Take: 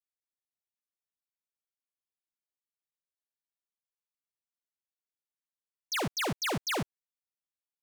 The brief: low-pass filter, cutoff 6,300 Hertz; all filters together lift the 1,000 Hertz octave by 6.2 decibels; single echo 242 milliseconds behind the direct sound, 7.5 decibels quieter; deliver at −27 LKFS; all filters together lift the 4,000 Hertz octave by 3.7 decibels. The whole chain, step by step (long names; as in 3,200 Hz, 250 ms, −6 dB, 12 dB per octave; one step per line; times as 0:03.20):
low-pass filter 6,300 Hz
parametric band 1,000 Hz +7.5 dB
parametric band 4,000 Hz +5 dB
single-tap delay 242 ms −7.5 dB
level +2 dB